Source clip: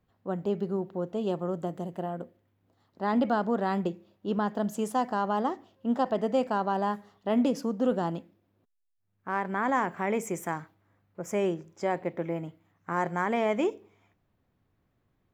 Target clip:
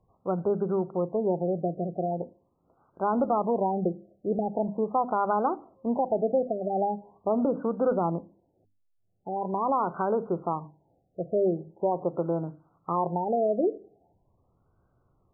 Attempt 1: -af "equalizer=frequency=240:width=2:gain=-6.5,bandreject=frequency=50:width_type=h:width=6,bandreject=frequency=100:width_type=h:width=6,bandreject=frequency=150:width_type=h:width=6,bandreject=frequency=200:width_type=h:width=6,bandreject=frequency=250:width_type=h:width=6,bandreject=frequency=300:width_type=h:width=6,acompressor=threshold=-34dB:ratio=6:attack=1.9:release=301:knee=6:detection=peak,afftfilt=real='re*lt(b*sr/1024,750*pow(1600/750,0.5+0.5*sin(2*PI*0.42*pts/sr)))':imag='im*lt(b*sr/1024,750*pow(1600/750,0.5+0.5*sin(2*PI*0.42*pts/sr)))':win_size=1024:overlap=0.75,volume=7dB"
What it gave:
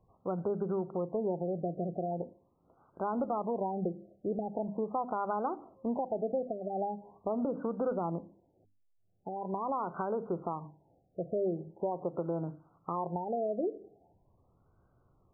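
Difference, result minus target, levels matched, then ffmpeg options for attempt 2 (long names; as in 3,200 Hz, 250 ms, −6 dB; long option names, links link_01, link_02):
downward compressor: peak gain reduction +8.5 dB
-af "equalizer=frequency=240:width=2:gain=-6.5,bandreject=frequency=50:width_type=h:width=6,bandreject=frequency=100:width_type=h:width=6,bandreject=frequency=150:width_type=h:width=6,bandreject=frequency=200:width_type=h:width=6,bandreject=frequency=250:width_type=h:width=6,bandreject=frequency=300:width_type=h:width=6,acompressor=threshold=-24dB:ratio=6:attack=1.9:release=301:knee=6:detection=peak,afftfilt=real='re*lt(b*sr/1024,750*pow(1600/750,0.5+0.5*sin(2*PI*0.42*pts/sr)))':imag='im*lt(b*sr/1024,750*pow(1600/750,0.5+0.5*sin(2*PI*0.42*pts/sr)))':win_size=1024:overlap=0.75,volume=7dB"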